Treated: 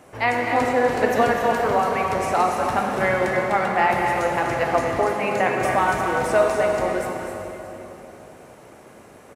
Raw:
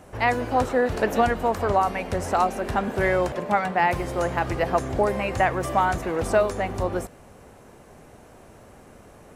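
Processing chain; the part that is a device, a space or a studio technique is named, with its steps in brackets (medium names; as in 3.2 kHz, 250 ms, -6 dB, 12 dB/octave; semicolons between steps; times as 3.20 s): stadium PA (high-pass 190 Hz 6 dB/octave; peaking EQ 2.2 kHz +3 dB 0.29 oct; loudspeakers at several distances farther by 85 m -9 dB, 96 m -10 dB; reverberation RT60 3.5 s, pre-delay 5 ms, DRR 1 dB); 5.16–5.61 s: Chebyshev high-pass 170 Hz, order 2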